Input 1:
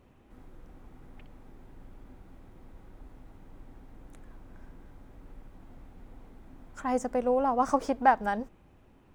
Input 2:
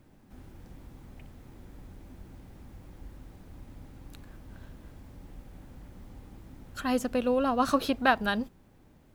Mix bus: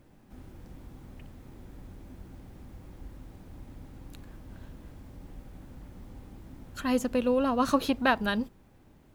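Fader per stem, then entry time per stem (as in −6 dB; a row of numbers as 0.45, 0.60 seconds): −8.0, 0.0 decibels; 0.00, 0.00 seconds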